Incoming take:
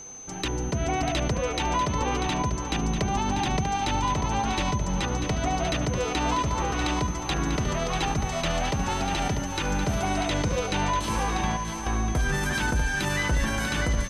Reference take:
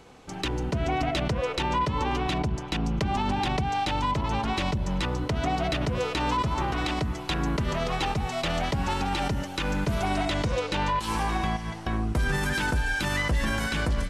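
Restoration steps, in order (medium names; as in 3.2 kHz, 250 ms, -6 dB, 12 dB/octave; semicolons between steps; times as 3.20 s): band-stop 6.2 kHz, Q 30; inverse comb 643 ms -7.5 dB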